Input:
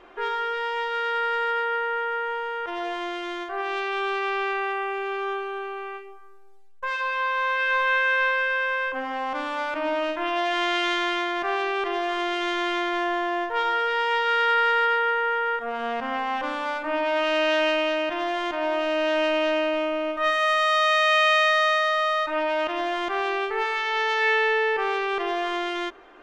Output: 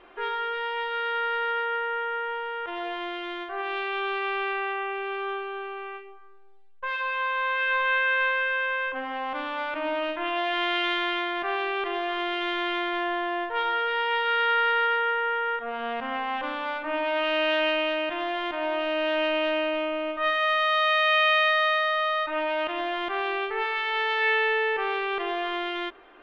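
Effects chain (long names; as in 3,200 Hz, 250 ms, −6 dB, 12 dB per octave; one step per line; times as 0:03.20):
high shelf with overshoot 4,800 Hz −12.5 dB, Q 1.5
level −3 dB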